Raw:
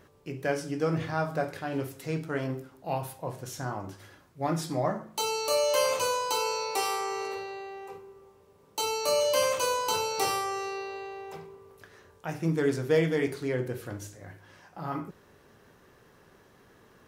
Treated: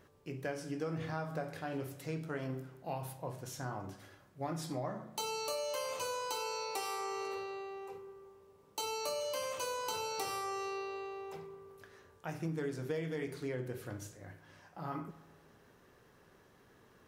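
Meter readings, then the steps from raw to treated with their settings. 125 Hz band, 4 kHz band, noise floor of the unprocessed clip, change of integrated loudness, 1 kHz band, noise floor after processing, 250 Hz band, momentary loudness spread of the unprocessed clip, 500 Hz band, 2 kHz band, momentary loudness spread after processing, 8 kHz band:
−8.0 dB, −9.5 dB, −59 dBFS, −10.0 dB, −9.0 dB, −64 dBFS, −9.0 dB, 16 LU, −10.5 dB, −9.5 dB, 13 LU, −9.5 dB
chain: downward compressor, threshold −29 dBFS, peak gain reduction 10 dB
spring reverb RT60 1.7 s, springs 31/46 ms, chirp 30 ms, DRR 15 dB
level −5.5 dB

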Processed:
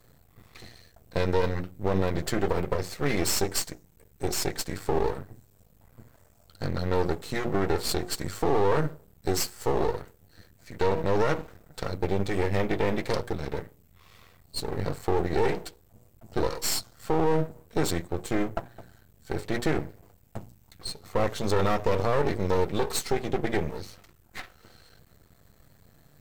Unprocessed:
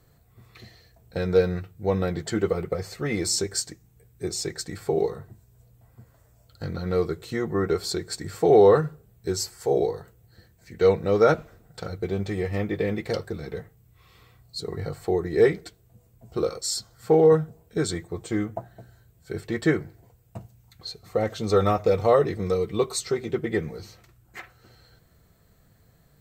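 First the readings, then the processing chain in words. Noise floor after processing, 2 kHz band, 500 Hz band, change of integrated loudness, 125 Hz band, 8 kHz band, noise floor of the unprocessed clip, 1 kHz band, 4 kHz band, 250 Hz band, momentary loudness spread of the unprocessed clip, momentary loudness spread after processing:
−60 dBFS, +0.5 dB, −5.5 dB, −4.0 dB, −1.0 dB, −1.0 dB, −60 dBFS, 0.0 dB, −0.5 dB, −2.5 dB, 17 LU, 13 LU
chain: mains-hum notches 60/120/180/240/300/360/420/480 Hz
brickwall limiter −18 dBFS, peak gain reduction 11 dB
half-wave rectification
level +5.5 dB

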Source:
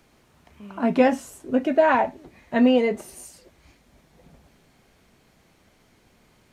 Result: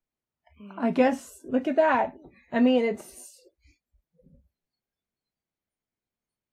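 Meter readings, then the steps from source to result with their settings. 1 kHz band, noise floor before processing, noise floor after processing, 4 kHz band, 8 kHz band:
−3.5 dB, −61 dBFS, below −85 dBFS, −3.5 dB, −3.5 dB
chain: noise reduction from a noise print of the clip's start 30 dB
level −3.5 dB

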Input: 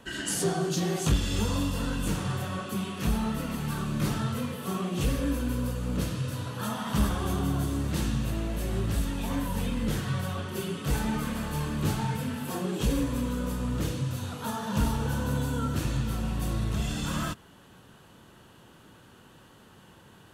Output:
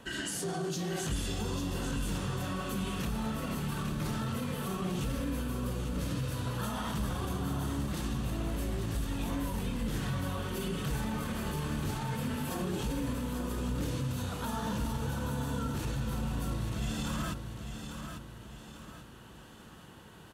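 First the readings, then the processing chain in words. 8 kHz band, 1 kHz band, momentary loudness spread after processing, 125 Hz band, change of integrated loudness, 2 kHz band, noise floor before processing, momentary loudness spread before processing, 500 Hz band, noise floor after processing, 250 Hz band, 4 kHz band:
−4.5 dB, −3.5 dB, 9 LU, −5.0 dB, −5.0 dB, −3.5 dB, −55 dBFS, 5 LU, −4.5 dB, −51 dBFS, −4.5 dB, −4.0 dB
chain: brickwall limiter −27 dBFS, peak gain reduction 11 dB
on a send: repeating echo 845 ms, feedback 41%, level −7.5 dB

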